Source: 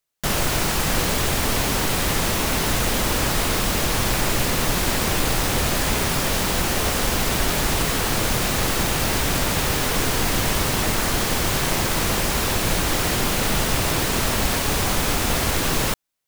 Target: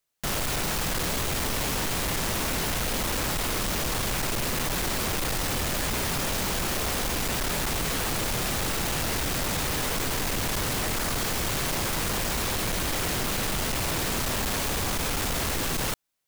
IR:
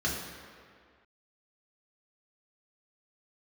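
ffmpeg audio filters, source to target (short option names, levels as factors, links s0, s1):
-af "volume=20,asoftclip=hard,volume=0.0501"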